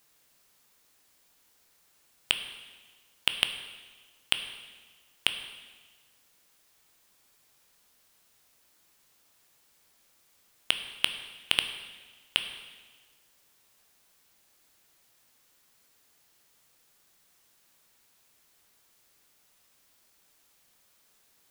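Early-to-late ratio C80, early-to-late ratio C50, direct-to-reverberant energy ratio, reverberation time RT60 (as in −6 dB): 10.5 dB, 9.5 dB, 7.5 dB, 1.4 s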